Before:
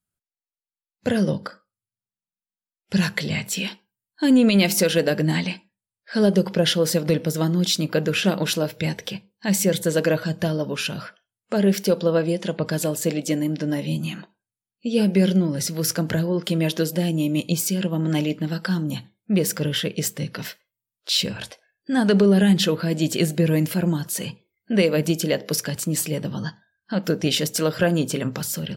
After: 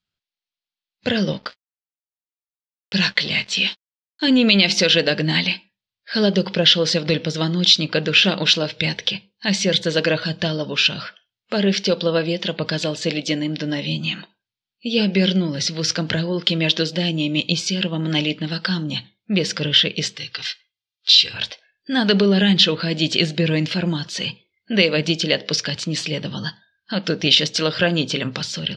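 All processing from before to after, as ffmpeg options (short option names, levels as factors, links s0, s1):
-filter_complex "[0:a]asettb=1/sr,asplit=3[s0][s1][s2];[s0]atrim=end=1.324[s3];[s1]atrim=start=1.32:end=4.28,asetpts=PTS-STARTPTS,afade=t=in:d=0.004:c=qsin,afade=t=out:st=2.956:d=0.004:c=qsin,lowshelf=f=89:g=-10.5,aeval=exprs='sgn(val(0))*max(abs(val(0))-0.00668,0)':c=same,asplit=2[s4][s5];[s5]adelay=16,volume=0.237[s6];[s4][s6]amix=inputs=2:normalize=0,atrim=end_sample=130536[s7];[s2]atrim=start=4.276[s8];[s3][s7]acrossfade=d=0.004:c1=hsin:c2=qsin[s9];[s9][s8]acrossfade=d=0.004:c1=qsin:c2=hsin,asettb=1/sr,asplit=3[s10][s11][s12];[s10]atrim=end=20.164[s13];[s11]atrim=start=20.16:end=21.34,asetpts=PTS-STARTPTS,afade=t=in:d=0.004:c=qsin,afade=t=out:st=1.176:d=0.004:c=qsin,highpass=60,equalizer=f=300:w=0.35:g=-14,aecho=1:1:2.5:0.67,atrim=end_sample=52038[s14];[s12]atrim=start=21.336[s15];[s13][s14]acrossfade=d=0.004:c1=hsin:c2=qsin[s16];[s16][s15]acrossfade=d=0.004:c1=qsin:c2=hsin,lowpass=f=5400:w=0.5412,lowpass=f=5400:w=1.3066,equalizer=f=3600:t=o:w=1.8:g=13.5,alimiter=level_in=1.06:limit=0.891:release=50:level=0:latency=1,volume=0.891"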